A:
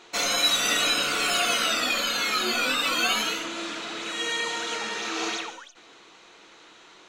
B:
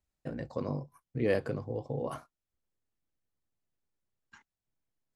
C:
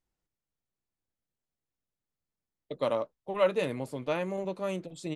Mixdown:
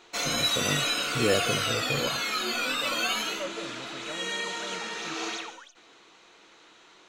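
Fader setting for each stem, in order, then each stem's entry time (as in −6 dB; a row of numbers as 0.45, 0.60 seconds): −4.0, +3.0, −11.5 decibels; 0.00, 0.00, 0.00 seconds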